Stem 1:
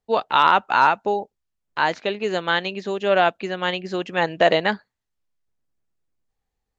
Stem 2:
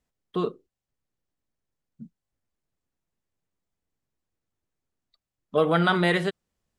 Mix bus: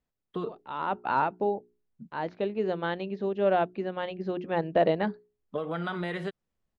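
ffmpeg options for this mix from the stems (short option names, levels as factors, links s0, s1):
-filter_complex "[0:a]lowpass=f=5200:w=0.5412,lowpass=f=5200:w=1.3066,tiltshelf=f=970:g=9,bandreject=f=60:t=h:w=6,bandreject=f=120:t=h:w=6,bandreject=f=180:t=h:w=6,bandreject=f=240:t=h:w=6,bandreject=f=300:t=h:w=6,bandreject=f=360:t=h:w=6,bandreject=f=420:t=h:w=6,adelay=350,volume=0.335[s0];[1:a]highshelf=f=5000:g=-11,acompressor=threshold=0.0562:ratio=12,volume=0.668,asplit=2[s1][s2];[s2]apad=whole_len=314535[s3];[s0][s3]sidechaincompress=threshold=0.00398:ratio=16:attack=9.1:release=412[s4];[s4][s1]amix=inputs=2:normalize=0"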